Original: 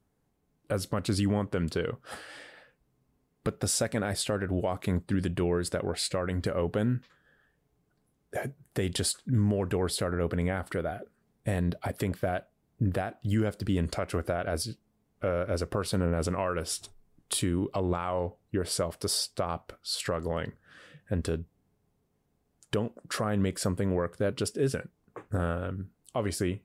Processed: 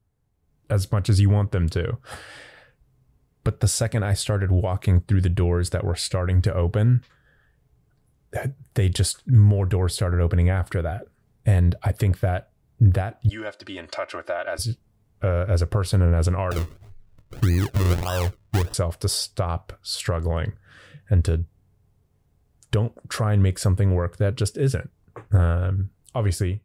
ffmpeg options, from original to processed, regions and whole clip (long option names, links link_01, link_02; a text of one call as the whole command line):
ffmpeg -i in.wav -filter_complex "[0:a]asettb=1/sr,asplit=3[link_01][link_02][link_03];[link_01]atrim=end=13.294[link_04];[link_02]atrim=start=13.29:end=14.59,asetpts=PTS-STARTPTS,afade=type=in:duration=0.004:curve=qsin,afade=type=out:start_time=1.296:duration=0.004:curve=qsin,highpass=600,lowpass=5100,aecho=1:1:3.3:0.75,atrim=end_sample=57330[link_05];[link_03]atrim=start=14.586[link_06];[link_04][link_05]acrossfade=duration=0.004:curve1=hsin:curve2=qsin[link_07];[link_07][link_06]acrossfade=duration=0.004:curve1=qsin:curve2=hsin,asettb=1/sr,asplit=3[link_08][link_09][link_10];[link_08]atrim=end=16.514[link_11];[link_09]atrim=start=16.51:end=18.74,asetpts=PTS-STARTPTS,afade=type=in:duration=0.004:curve=qsin,afade=type=out:start_time=2.226:duration=0.004:curve=qsin,highshelf=frequency=3400:gain=-6,adynamicsmooth=sensitivity=4:basefreq=1700,acrusher=samples=39:mix=1:aa=0.000001:lfo=1:lforange=39:lforate=1.7[link_12];[link_10]atrim=start=18.736[link_13];[link_11][link_12]acrossfade=duration=0.004:curve1=hsin:curve2=qsin[link_14];[link_14][link_13]acrossfade=duration=0.004:curve1=qsin:curve2=hsin,lowshelf=frequency=150:width_type=q:width=1.5:gain=9,dynaudnorm=framelen=310:gausssize=3:maxgain=8dB,volume=-4dB" out.wav